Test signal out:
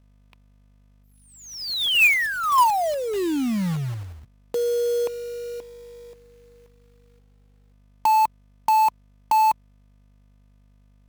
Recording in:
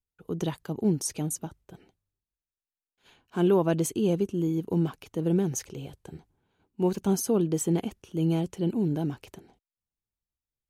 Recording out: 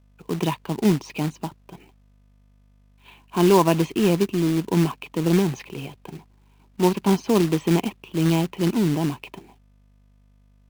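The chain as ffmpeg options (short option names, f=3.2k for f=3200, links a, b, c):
-af "highpass=f=130:w=0.5412,highpass=f=130:w=1.3066,equalizer=f=500:t=q:w=4:g=-4,equalizer=f=1k:t=q:w=4:g=10,equalizer=f=1.5k:t=q:w=4:g=-7,equalizer=f=2.5k:t=q:w=4:g=10,lowpass=f=3.9k:w=0.5412,lowpass=f=3.9k:w=1.3066,aeval=exprs='val(0)+0.000891*(sin(2*PI*50*n/s)+sin(2*PI*2*50*n/s)/2+sin(2*PI*3*50*n/s)/3+sin(2*PI*4*50*n/s)/4+sin(2*PI*5*50*n/s)/5)':c=same,acrusher=bits=3:mode=log:mix=0:aa=0.000001,volume=6dB"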